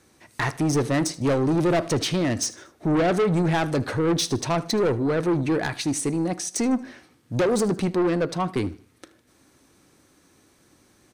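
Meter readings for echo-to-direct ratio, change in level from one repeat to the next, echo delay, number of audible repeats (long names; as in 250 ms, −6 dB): −19.5 dB, −8.0 dB, 77 ms, 2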